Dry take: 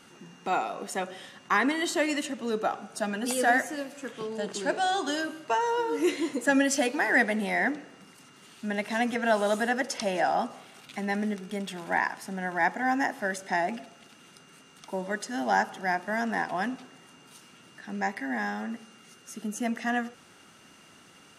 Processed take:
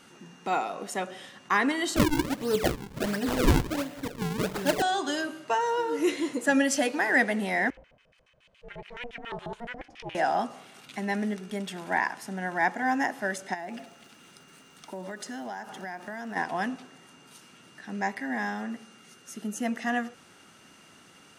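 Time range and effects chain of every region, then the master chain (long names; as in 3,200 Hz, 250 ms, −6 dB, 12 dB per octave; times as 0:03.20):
0:01.96–0:04.82: parametric band 110 Hz +12 dB 1.5 octaves + comb filter 6.7 ms, depth 54% + sample-and-hold swept by an LFO 41×, swing 160% 1.4 Hz
0:07.70–0:10.15: auto-filter band-pass square 7.1 Hz 380–2,500 Hz + ring modulation 240 Hz
0:13.53–0:16.35: downward compressor 10 to 1, threshold −33 dBFS + surface crackle 560 per second −53 dBFS
whole clip: no processing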